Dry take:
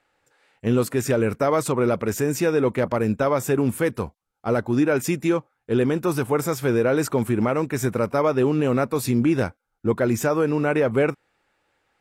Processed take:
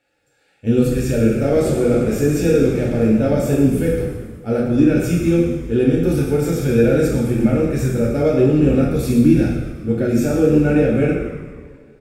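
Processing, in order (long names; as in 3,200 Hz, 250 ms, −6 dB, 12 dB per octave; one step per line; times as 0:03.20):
parametric band 1,100 Hz −14.5 dB 0.5 octaves
harmonic and percussive parts rebalanced harmonic +8 dB
low-shelf EQ 72 Hz +9 dB
notch comb filter 1,000 Hz
echo with shifted repeats 119 ms, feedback 59%, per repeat −95 Hz, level −12 dB
coupled-rooms reverb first 0.87 s, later 2.5 s, from −17 dB, DRR −3.5 dB
0:01.22–0:03.55: feedback echo with a swinging delay time 98 ms, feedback 79%, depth 164 cents, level −15 dB
level −6 dB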